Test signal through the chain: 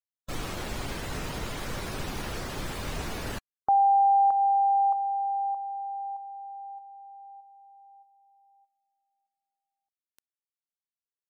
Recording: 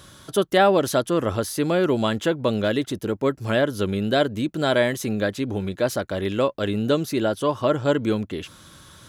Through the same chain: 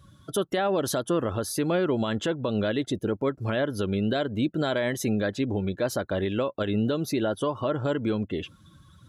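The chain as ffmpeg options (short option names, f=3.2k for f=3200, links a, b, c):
-af "afftdn=nr=18:nf=-41,alimiter=limit=-17dB:level=0:latency=1:release=125"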